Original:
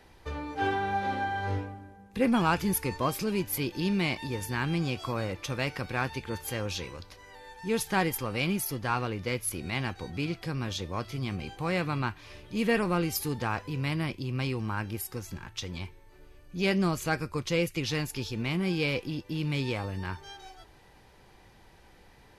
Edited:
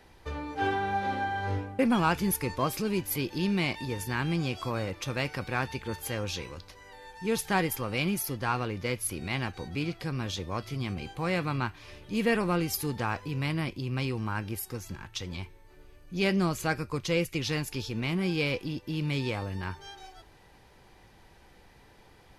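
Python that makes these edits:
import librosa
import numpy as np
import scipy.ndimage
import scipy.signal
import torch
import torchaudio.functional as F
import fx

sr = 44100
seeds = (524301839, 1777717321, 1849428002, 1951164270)

y = fx.edit(x, sr, fx.cut(start_s=1.79, length_s=0.42), tone=tone)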